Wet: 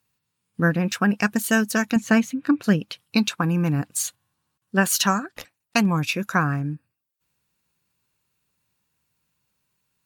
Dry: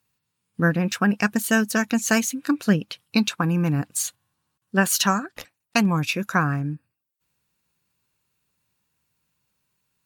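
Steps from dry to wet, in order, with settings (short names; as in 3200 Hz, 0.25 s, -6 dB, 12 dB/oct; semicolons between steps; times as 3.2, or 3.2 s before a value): 1.96–2.64 tone controls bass +7 dB, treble -14 dB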